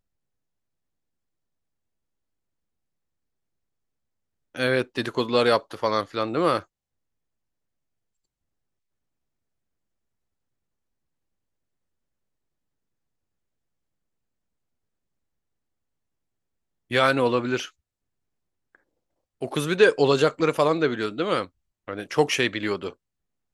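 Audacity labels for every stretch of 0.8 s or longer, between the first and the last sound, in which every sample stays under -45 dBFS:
6.630000	16.910000	silence
17.700000	18.750000	silence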